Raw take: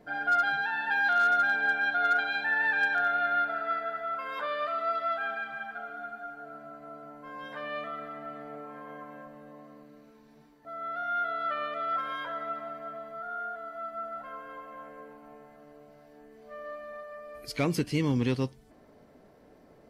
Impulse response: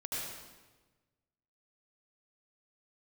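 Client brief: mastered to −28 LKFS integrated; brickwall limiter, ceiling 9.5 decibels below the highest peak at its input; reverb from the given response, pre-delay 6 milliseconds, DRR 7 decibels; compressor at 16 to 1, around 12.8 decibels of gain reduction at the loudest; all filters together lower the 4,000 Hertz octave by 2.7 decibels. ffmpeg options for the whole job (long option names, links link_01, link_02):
-filter_complex "[0:a]equalizer=frequency=4000:width_type=o:gain=-3.5,acompressor=threshold=-35dB:ratio=16,alimiter=level_in=12dB:limit=-24dB:level=0:latency=1,volume=-12dB,asplit=2[link_01][link_02];[1:a]atrim=start_sample=2205,adelay=6[link_03];[link_02][link_03]afir=irnorm=-1:irlink=0,volume=-9.5dB[link_04];[link_01][link_04]amix=inputs=2:normalize=0,volume=14.5dB"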